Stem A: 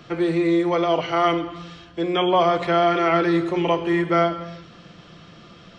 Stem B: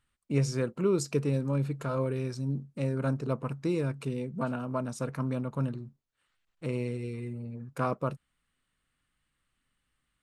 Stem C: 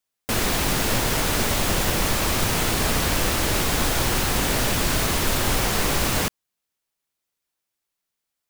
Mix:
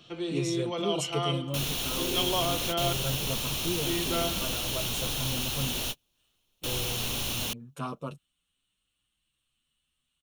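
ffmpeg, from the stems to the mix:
-filter_complex "[0:a]volume=0.251,asplit=3[s0][s1][s2];[s0]atrim=end=2.93,asetpts=PTS-STARTPTS,afade=t=out:st=2.926:d=0.004:c=hsin[s3];[s1]atrim=start=2.93:end=3.85,asetpts=PTS-STARTPTS,volume=0[s4];[s2]atrim=start=3.85,asetpts=PTS-STARTPTS,afade=t=in:d=0.004:c=hsin[s5];[s3][s4][s5]concat=n=3:v=0:a=1[s6];[1:a]asplit=2[s7][s8];[s8]adelay=8,afreqshift=0.47[s9];[s7][s9]amix=inputs=2:normalize=1,volume=0.794,asplit=2[s10][s11];[2:a]bandreject=f=7900:w=5.1,adelay=1250,volume=0.211[s12];[s11]apad=whole_len=429919[s13];[s12][s13]sidechaingate=range=0.00631:threshold=0.00251:ratio=16:detection=peak[s14];[s6][s10][s14]amix=inputs=3:normalize=0,highshelf=f=2400:t=q:w=3:g=6.5,bandreject=f=4800:w=7.3"

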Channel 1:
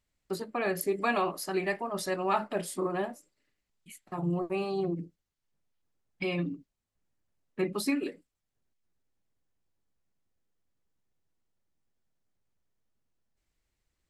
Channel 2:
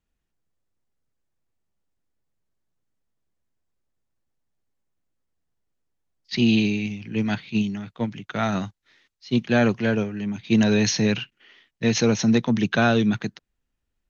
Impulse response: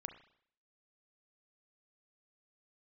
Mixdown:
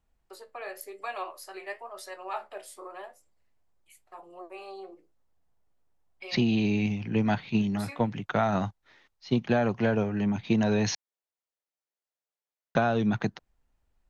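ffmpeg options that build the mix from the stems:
-filter_complex "[0:a]highpass=f=480:w=0.5412,highpass=f=480:w=1.3066,flanger=delay=9.7:depth=6:regen=58:speed=0.94:shape=sinusoidal,volume=0.708[s0];[1:a]equalizer=f=800:w=0.76:g=12.5,volume=0.631,asplit=3[s1][s2][s3];[s1]atrim=end=10.95,asetpts=PTS-STARTPTS,afade=t=out:st=10.946:d=0.004:c=hsin[s4];[s2]atrim=start=10.95:end=12.75,asetpts=PTS-STARTPTS,volume=0[s5];[s3]atrim=start=12.75,asetpts=PTS-STARTPTS,afade=t=in:d=0.004:c=hsin[s6];[s4][s5][s6]concat=n=3:v=0:a=1,asplit=2[s7][s8];[s8]apad=whole_len=621527[s9];[s0][s9]sidechaincompress=threshold=0.0501:ratio=8:attack=6:release=330[s10];[s10][s7]amix=inputs=2:normalize=0,lowshelf=f=140:g=11.5,acompressor=threshold=0.0891:ratio=12"

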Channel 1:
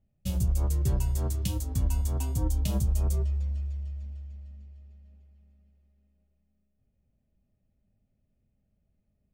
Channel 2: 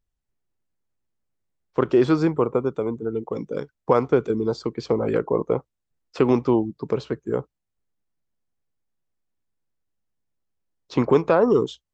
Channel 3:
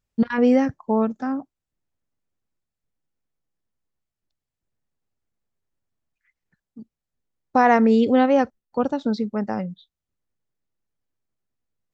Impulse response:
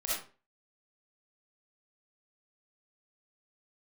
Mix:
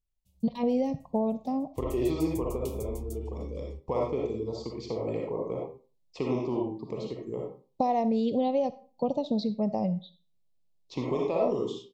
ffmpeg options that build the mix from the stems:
-filter_complex "[0:a]highshelf=f=6900:g=6.5,volume=0.596[s0];[1:a]volume=0.335,asplit=3[s1][s2][s3];[s2]volume=0.596[s4];[2:a]equalizer=f=160:t=o:w=0.67:g=12,equalizer=f=630:t=o:w=0.67:g=10,equalizer=f=1600:t=o:w=0.67:g=-10,equalizer=f=4000:t=o:w=0.67:g=10,acompressor=threshold=0.158:ratio=6,adelay=250,volume=0.398,asplit=2[s5][s6];[s6]volume=0.119[s7];[s3]apad=whole_len=411592[s8];[s0][s8]sidechaingate=range=0.0224:threshold=0.00141:ratio=16:detection=peak[s9];[s9][s1]amix=inputs=2:normalize=0,equalizer=f=530:w=0.38:g=-7,acompressor=threshold=0.01:ratio=2,volume=1[s10];[3:a]atrim=start_sample=2205[s11];[s4][s7]amix=inputs=2:normalize=0[s12];[s12][s11]afir=irnorm=-1:irlink=0[s13];[s5][s10][s13]amix=inputs=3:normalize=0,asuperstop=centerf=1500:order=4:qfactor=1.6"

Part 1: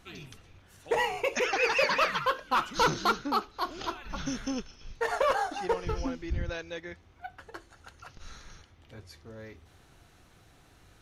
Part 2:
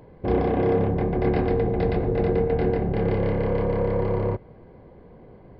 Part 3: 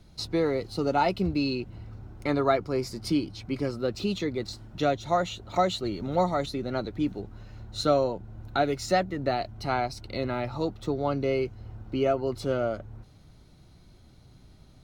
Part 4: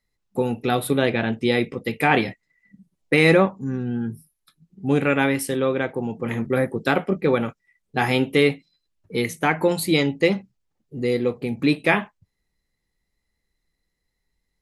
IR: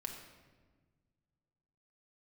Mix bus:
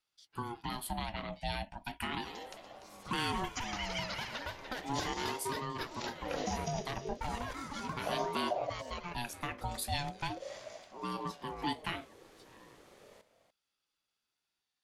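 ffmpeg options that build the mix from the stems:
-filter_complex "[0:a]acompressor=threshold=0.0282:ratio=5,adelay=2200,volume=1.33,asplit=2[s0][s1];[s1]volume=0.251[s2];[1:a]acompressor=threshold=0.0562:ratio=6,adelay=2250,volume=0.112[s3];[2:a]highpass=1400,alimiter=level_in=1.88:limit=0.0631:level=0:latency=1:release=50,volume=0.531,volume=0.133[s4];[3:a]highpass=170,lowshelf=f=230:g=-9.5,volume=0.422,asplit=2[s5][s6];[s6]apad=whole_len=345979[s7];[s3][s7]sidechaincompress=threshold=0.01:ratio=8:attack=16:release=1040[s8];[s2]aecho=0:1:293:1[s9];[s0][s8][s4][s5][s9]amix=inputs=5:normalize=0,acrossover=split=330|3000[s10][s11][s12];[s11]acompressor=threshold=0.0126:ratio=6[s13];[s10][s13][s12]amix=inputs=3:normalize=0,aeval=exprs='val(0)*sin(2*PI*540*n/s+540*0.25/0.36*sin(2*PI*0.36*n/s))':c=same"

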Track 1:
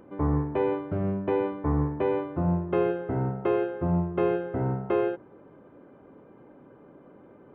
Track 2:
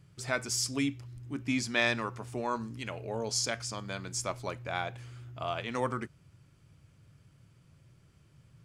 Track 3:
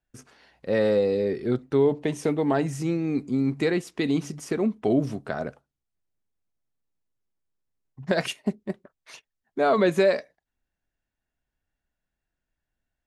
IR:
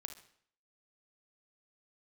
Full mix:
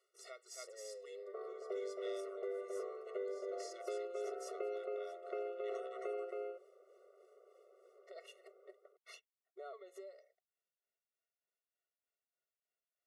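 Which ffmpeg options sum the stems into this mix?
-filter_complex "[0:a]adelay=1150,volume=0.316,asplit=2[s0][s1];[s1]volume=0.562[s2];[1:a]volume=0.531,asplit=2[s3][s4];[s4]volume=0.2[s5];[2:a]acompressor=threshold=0.0316:ratio=6,volume=0.531,asplit=2[s6][s7];[s7]apad=whole_len=381450[s8];[s3][s8]sidechaincompress=threshold=0.00398:ratio=8:attack=6.3:release=238[s9];[s9][s6]amix=inputs=2:normalize=0,tremolo=f=3.3:d=0.65,acompressor=threshold=0.00501:ratio=10,volume=1[s10];[s2][s5]amix=inputs=2:normalize=0,aecho=0:1:271:1[s11];[s0][s10][s11]amix=inputs=3:normalize=0,acrossover=split=190|3000[s12][s13][s14];[s13]acompressor=threshold=0.0158:ratio=6[s15];[s12][s15][s14]amix=inputs=3:normalize=0,afftfilt=real='re*eq(mod(floor(b*sr/1024/370),2),1)':imag='im*eq(mod(floor(b*sr/1024/370),2),1)':win_size=1024:overlap=0.75"

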